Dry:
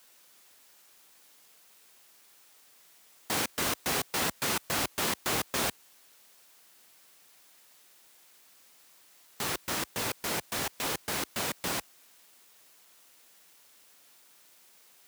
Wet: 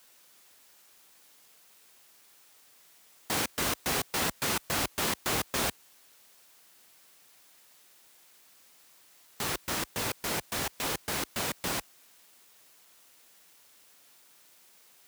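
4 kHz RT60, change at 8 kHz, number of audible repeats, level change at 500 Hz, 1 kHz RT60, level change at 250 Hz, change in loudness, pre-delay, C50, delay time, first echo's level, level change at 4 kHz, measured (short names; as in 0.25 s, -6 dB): none, 0.0 dB, none, 0.0 dB, none, +0.5 dB, 0.0 dB, none, none, none, none, 0.0 dB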